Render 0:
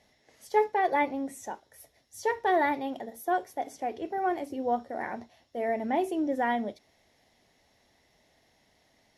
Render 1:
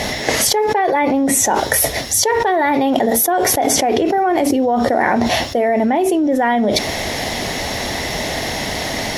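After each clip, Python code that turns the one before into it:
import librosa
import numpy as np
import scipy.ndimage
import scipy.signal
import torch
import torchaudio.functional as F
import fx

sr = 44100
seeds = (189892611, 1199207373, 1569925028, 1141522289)

y = fx.env_flatten(x, sr, amount_pct=100)
y = F.gain(torch.from_numpy(y), 4.5).numpy()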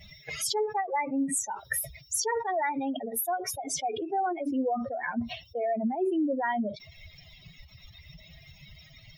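y = fx.bin_expand(x, sr, power=3.0)
y = fx.end_taper(y, sr, db_per_s=160.0)
y = F.gain(torch.from_numpy(y), -7.5).numpy()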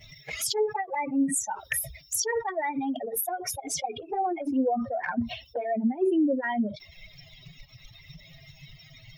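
y = fx.env_flanger(x, sr, rest_ms=9.5, full_db=-24.0)
y = F.gain(torch.from_numpy(y), 4.5).numpy()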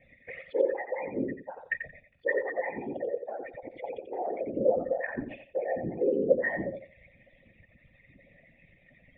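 y = fx.whisperise(x, sr, seeds[0])
y = fx.formant_cascade(y, sr, vowel='e')
y = fx.echo_feedback(y, sr, ms=88, feedback_pct=18, wet_db=-8)
y = F.gain(torch.from_numpy(y), 8.0).numpy()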